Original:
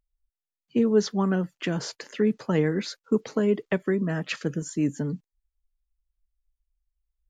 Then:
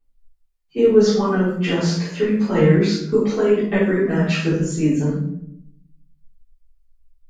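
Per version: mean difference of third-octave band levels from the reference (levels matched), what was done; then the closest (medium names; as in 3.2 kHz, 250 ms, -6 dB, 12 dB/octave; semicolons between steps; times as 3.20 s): 7.5 dB: chorus voices 6, 0.52 Hz, delay 15 ms, depth 4.3 ms; simulated room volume 140 m³, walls mixed, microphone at 3.6 m; trim -1 dB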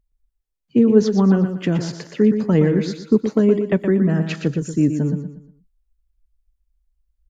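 5.0 dB: bass shelf 490 Hz +10.5 dB; feedback delay 119 ms, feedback 34%, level -8 dB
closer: second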